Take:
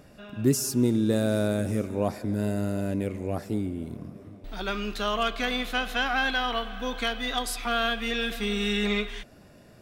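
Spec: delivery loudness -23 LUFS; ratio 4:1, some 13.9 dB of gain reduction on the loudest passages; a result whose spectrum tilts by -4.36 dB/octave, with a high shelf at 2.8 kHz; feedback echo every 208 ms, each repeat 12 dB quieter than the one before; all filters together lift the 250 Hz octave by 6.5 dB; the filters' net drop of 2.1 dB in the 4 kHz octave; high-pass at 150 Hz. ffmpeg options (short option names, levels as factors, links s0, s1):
-af "highpass=150,equalizer=f=250:t=o:g=8.5,highshelf=f=2800:g=6.5,equalizer=f=4000:t=o:g=-8,acompressor=threshold=0.0355:ratio=4,aecho=1:1:208|416|624:0.251|0.0628|0.0157,volume=2.82"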